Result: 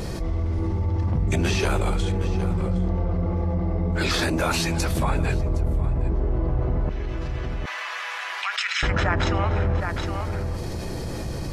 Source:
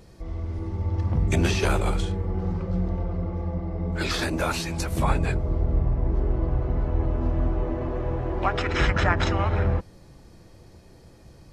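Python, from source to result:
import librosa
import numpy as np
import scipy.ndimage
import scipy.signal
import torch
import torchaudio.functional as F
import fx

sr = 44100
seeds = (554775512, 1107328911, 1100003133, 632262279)

y = fx.bessel_highpass(x, sr, hz=2500.0, order=4, at=(6.89, 8.83))
y = y + 10.0 ** (-17.5 / 20.0) * np.pad(y, (int(764 * sr / 1000.0), 0))[:len(y)]
y = fx.env_flatten(y, sr, amount_pct=70)
y = y * 10.0 ** (-2.5 / 20.0)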